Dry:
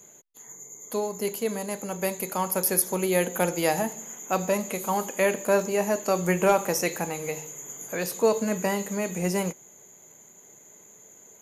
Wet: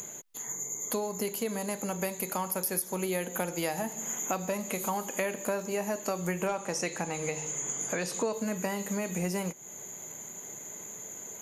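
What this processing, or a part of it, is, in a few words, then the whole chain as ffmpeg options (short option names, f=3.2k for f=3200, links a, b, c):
upward and downward compression: -filter_complex "[0:a]equalizer=f=450:w=1.5:g=-2.5,asettb=1/sr,asplit=3[a][b][c];[a]atrim=end=6.474[d];[b]atrim=start=6.47:end=8.33,asetpts=PTS-STARTPTS,afade=t=in:d=0.004:c=qsin,afade=t=out:st=1.856:d=0.004:c=qsin,lowpass=f=9.1k:w=0.5412,lowpass=f=9.1k:w=1.3066[e];[c]atrim=start=8.326[f];[d][e]acrossfade=d=0.004:c1=hsin:c2=qsin[g];[g][f]acrossfade=d=0.004:c1=qsin:c2=hsin,acompressor=mode=upward:threshold=-47dB:ratio=2.5,acompressor=threshold=-38dB:ratio=5,volume=8dB"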